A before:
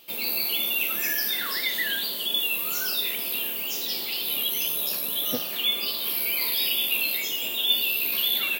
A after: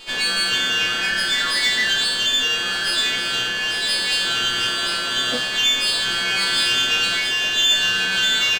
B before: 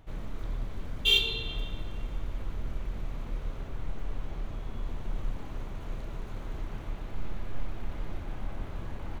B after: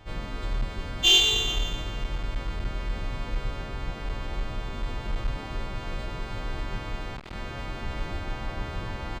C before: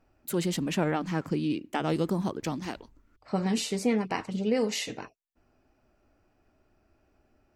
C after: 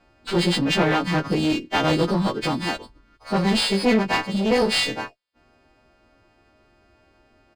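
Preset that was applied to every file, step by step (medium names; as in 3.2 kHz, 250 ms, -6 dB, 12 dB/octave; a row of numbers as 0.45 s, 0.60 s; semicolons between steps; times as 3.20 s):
partials quantised in pitch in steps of 2 st; in parallel at -0.5 dB: peak limiter -14.5 dBFS; on the sum: one-sided clip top -24 dBFS; resampled via 11.025 kHz; sliding maximum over 3 samples; peak normalisation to -6 dBFS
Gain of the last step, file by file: +5.0 dB, +2.5 dB, +4.5 dB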